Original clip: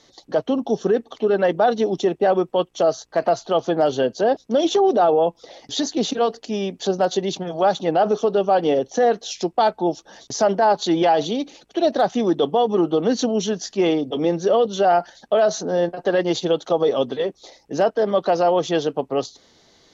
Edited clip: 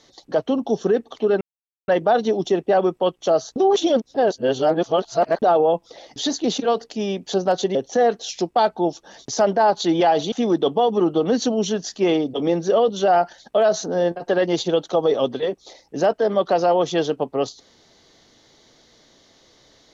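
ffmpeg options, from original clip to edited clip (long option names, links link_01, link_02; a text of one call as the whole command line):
ffmpeg -i in.wav -filter_complex "[0:a]asplit=6[link_01][link_02][link_03][link_04][link_05][link_06];[link_01]atrim=end=1.41,asetpts=PTS-STARTPTS,afade=type=out:start_time=1.406:duration=0.004:curve=hsin,apad=pad_dur=0.47[link_07];[link_02]atrim=start=1.41:end=3.092,asetpts=PTS-STARTPTS,afade=type=in:duration=0.004:curve=hsin[link_08];[link_03]atrim=start=3.088:end=4.952,asetpts=PTS-STARTPTS,areverse[link_09];[link_04]atrim=start=4.948:end=7.282[link_10];[link_05]atrim=start=8.768:end=11.342[link_11];[link_06]atrim=start=12.088[link_12];[link_07][link_08]concat=n=2:v=0:a=1[link_13];[link_13][link_09]acrossfade=duration=0.004:curve1=hsin:curve2=hsin[link_14];[link_14][link_10]acrossfade=duration=0.004:curve1=hsin:curve2=hsin[link_15];[link_15][link_11]acrossfade=duration=0.004:curve1=hsin:curve2=hsin[link_16];[link_16][link_12]acrossfade=duration=0.004:curve1=hsin:curve2=hsin" out.wav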